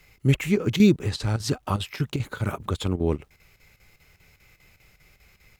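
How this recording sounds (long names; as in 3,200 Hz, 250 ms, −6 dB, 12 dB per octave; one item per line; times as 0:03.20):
a quantiser's noise floor 12 bits, dither none
chopped level 5 Hz, depth 65%, duty 80%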